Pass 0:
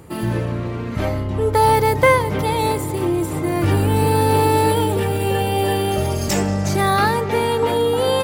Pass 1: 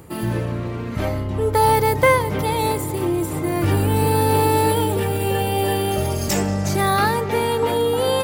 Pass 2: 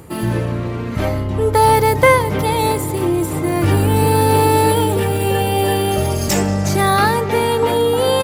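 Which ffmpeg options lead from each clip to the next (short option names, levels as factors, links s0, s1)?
-af "highshelf=f=12000:g=7,areverse,acompressor=mode=upward:threshold=0.0501:ratio=2.5,areverse,volume=0.841"
-af "aresample=32000,aresample=44100,volume=1.58"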